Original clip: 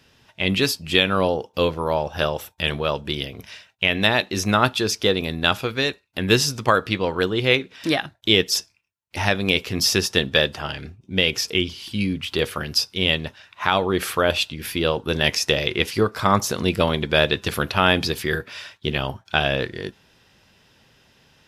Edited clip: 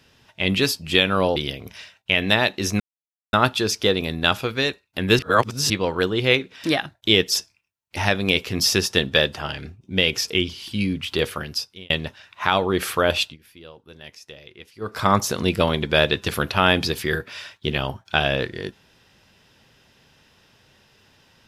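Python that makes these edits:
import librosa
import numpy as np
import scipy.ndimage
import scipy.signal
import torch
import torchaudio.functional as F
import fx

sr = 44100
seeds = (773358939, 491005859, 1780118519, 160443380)

y = fx.edit(x, sr, fx.cut(start_s=1.36, length_s=1.73),
    fx.insert_silence(at_s=4.53, length_s=0.53),
    fx.reverse_span(start_s=6.39, length_s=0.51),
    fx.fade_out_span(start_s=12.47, length_s=0.63),
    fx.fade_down_up(start_s=14.43, length_s=1.72, db=-22.0, fade_s=0.15), tone=tone)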